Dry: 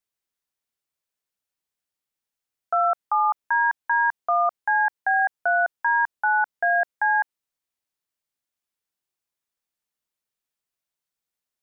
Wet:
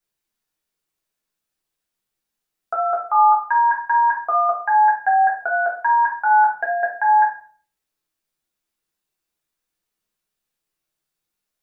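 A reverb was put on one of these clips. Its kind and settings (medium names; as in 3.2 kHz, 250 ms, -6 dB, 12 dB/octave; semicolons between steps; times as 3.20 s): simulated room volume 45 m³, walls mixed, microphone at 0.93 m; trim +1 dB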